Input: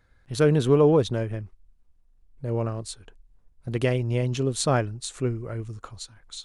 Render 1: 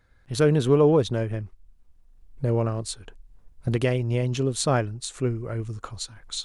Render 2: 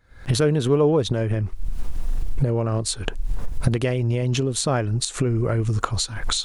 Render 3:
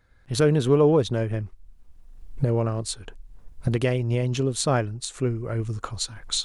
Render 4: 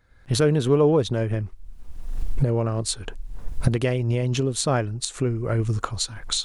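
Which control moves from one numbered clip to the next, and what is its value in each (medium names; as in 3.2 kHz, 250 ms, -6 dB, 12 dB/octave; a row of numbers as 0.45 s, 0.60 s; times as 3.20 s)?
recorder AGC, rising by: 5.7 dB/s, 91 dB/s, 14 dB/s, 36 dB/s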